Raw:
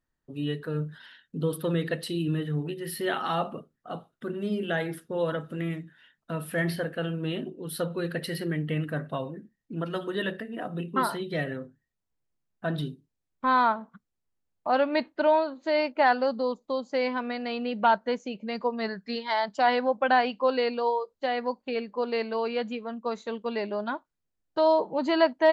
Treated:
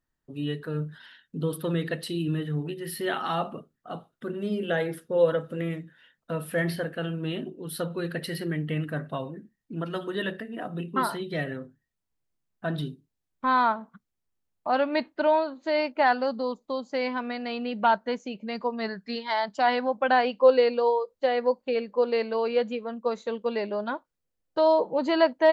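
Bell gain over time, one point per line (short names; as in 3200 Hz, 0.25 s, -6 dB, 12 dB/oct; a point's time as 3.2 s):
bell 510 Hz 0.24 oct
3.95 s -2 dB
4.66 s +8.5 dB
6.33 s +8.5 dB
6.94 s -2 dB
19.94 s -2 dB
20.37 s +8.5 dB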